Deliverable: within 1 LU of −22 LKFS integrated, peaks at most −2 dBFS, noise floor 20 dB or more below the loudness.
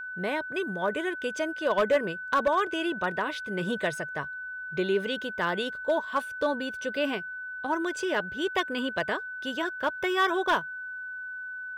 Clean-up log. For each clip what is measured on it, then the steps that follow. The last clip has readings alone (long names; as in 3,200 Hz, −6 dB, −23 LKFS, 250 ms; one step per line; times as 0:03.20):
share of clipped samples 0.4%; peaks flattened at −17.5 dBFS; interfering tone 1,500 Hz; level of the tone −35 dBFS; integrated loudness −29.5 LKFS; sample peak −17.5 dBFS; target loudness −22.0 LKFS
→ clipped peaks rebuilt −17.5 dBFS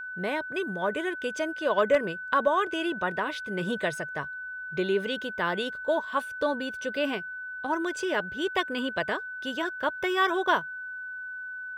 share of clipped samples 0.0%; interfering tone 1,500 Hz; level of the tone −35 dBFS
→ notch filter 1,500 Hz, Q 30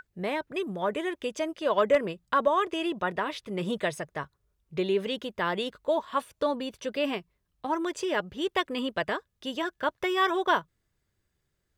interfering tone none found; integrated loudness −29.5 LKFS; sample peak −11.0 dBFS; target loudness −22.0 LKFS
→ level +7.5 dB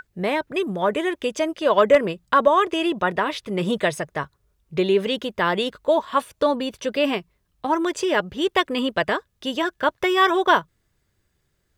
integrated loudness −22.0 LKFS; sample peak −3.5 dBFS; background noise floor −71 dBFS